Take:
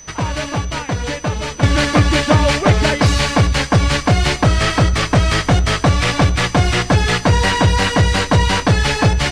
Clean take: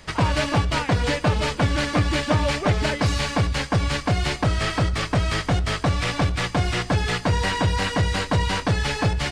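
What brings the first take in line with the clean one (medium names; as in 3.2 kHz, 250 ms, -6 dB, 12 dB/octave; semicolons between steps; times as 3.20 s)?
band-stop 6 kHz, Q 30; gain correction -8 dB, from 1.63 s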